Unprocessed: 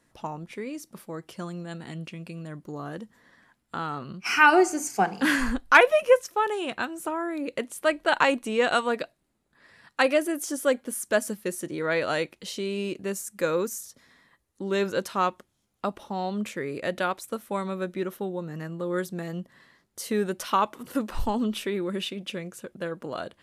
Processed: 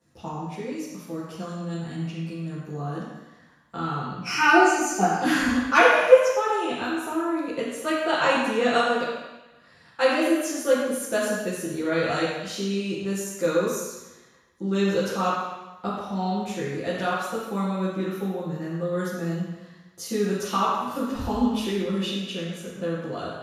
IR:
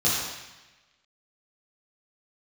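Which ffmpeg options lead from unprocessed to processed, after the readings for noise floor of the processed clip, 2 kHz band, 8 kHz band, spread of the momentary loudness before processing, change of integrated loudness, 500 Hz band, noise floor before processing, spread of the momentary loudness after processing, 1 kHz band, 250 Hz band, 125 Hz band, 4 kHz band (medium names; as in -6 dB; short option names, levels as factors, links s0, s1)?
-54 dBFS, +0.5 dB, +1.5 dB, 16 LU, +2.0 dB, +2.5 dB, -73 dBFS, 14 LU, +2.0 dB, +4.0 dB, +6.0 dB, +2.5 dB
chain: -filter_complex "[1:a]atrim=start_sample=2205[s0];[0:a][s0]afir=irnorm=-1:irlink=0,volume=0.237"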